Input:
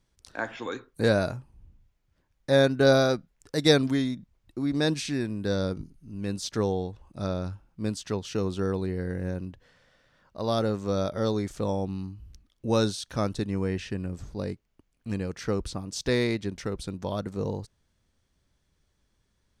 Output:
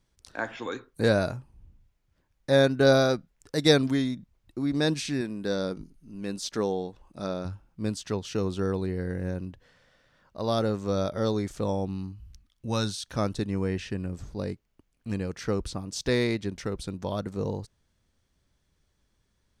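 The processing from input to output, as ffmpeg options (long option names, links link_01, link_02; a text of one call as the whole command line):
ffmpeg -i in.wav -filter_complex "[0:a]asettb=1/sr,asplit=3[link_01][link_02][link_03];[link_01]atrim=end=5.214[link_04];[link_02]atrim=start=5.21:end=7.45,asetpts=PTS-STARTPTS,afade=type=in:duration=0.004:curve=qsin,afade=type=out:start_time=2.236:duration=0.004:curve=qsin,equalizer=frequency=91:width=1.5:gain=-13.5[link_05];[link_03]atrim=start=7.446[link_06];[link_04][link_05]acrossfade=duration=0.004:curve1=hsin:curve2=qsin[link_07];[link_07][link_06]acrossfade=duration=0.004:curve1=qsin:curve2=hsin,asettb=1/sr,asplit=3[link_08][link_09][link_10];[link_08]atrim=end=12.124[link_11];[link_09]atrim=start=12.12:end=13.06,asetpts=PTS-STARTPTS,afade=type=in:duration=0.004:curve=qsin,afade=type=out:start_time=0.936:duration=0.004:curve=qsin,equalizer=frequency=420:width_type=o:width=1.5:gain=-9[link_12];[link_10]atrim=start=13.056[link_13];[link_11][link_12]acrossfade=duration=0.004:curve1=hsin:curve2=qsin[link_14];[link_14][link_13]acrossfade=duration=0.004:curve1=qsin:curve2=hsin" out.wav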